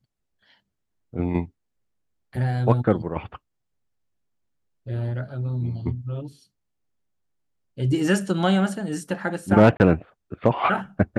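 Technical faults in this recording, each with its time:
9.77–9.8 gap 29 ms

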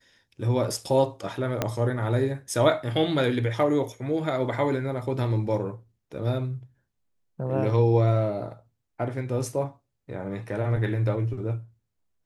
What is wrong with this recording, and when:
1.62 pop -9 dBFS

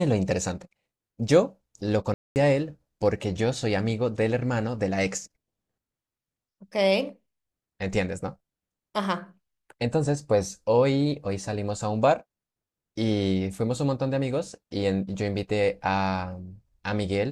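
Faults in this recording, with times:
2.14–2.36 gap 0.219 s

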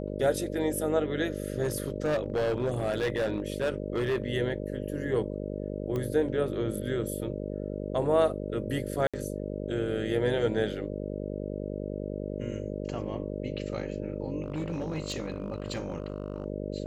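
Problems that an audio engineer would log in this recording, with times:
buzz 50 Hz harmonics 12 -35 dBFS
1.62–4.22 clipped -23.5 dBFS
5.96 pop -21 dBFS
9.07–9.14 gap 66 ms
14.44–16.46 clipped -27.5 dBFS

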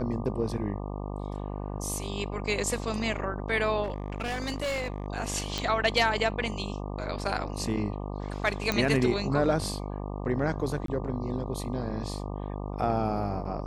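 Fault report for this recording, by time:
buzz 50 Hz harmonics 24 -35 dBFS
3.83–5.06 clipped -27 dBFS
5.58 pop -16 dBFS
8.72 pop -12 dBFS
10.86–10.88 gap 23 ms

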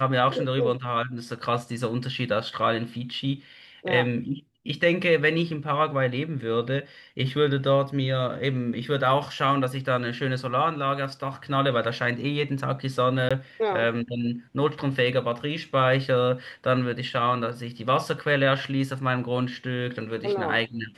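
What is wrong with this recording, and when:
13.29–13.31 gap 16 ms

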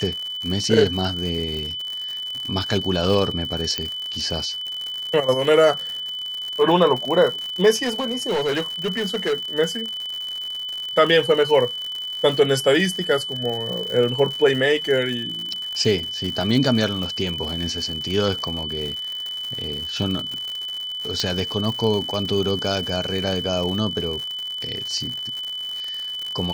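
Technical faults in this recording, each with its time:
crackle 130/s -27 dBFS
tone 3000 Hz -27 dBFS
3.78 pop -9 dBFS
7.82–9.34 clipped -18.5 dBFS
21.2 pop -9 dBFS

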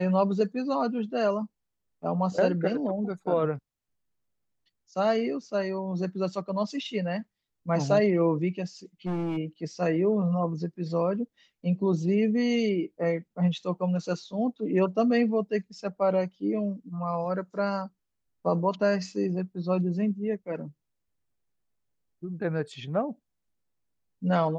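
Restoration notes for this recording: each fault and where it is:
9.06–9.38 clipped -27 dBFS

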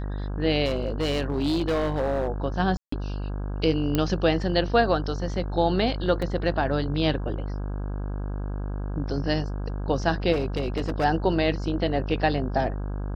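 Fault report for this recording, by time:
buzz 50 Hz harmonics 33 -30 dBFS
0.65–2.29 clipped -20.5 dBFS
2.77–2.92 gap 0.154 s
3.95 pop -9 dBFS
6.22 gap 3.6 ms
10.32–11.05 clipped -20.5 dBFS

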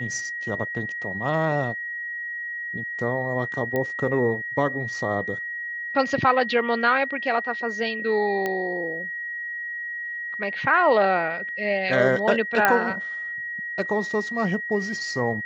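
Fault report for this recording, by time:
tone 1900 Hz -29 dBFS
3.76 pop -14 dBFS
8.46 pop -13 dBFS
12.65 pop -4 dBFS

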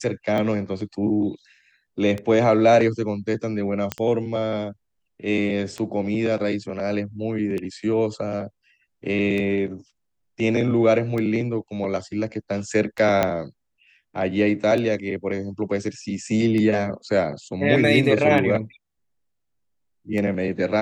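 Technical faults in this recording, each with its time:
tick 33 1/3 rpm -16 dBFS
3.92 pop -8 dBFS
13.23 pop -6 dBFS

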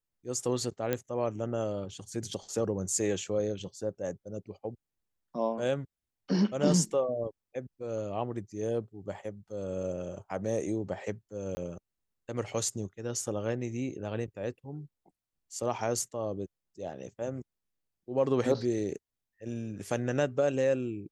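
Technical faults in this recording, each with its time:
0.93 pop -15 dBFS
11.55–11.57 gap 20 ms

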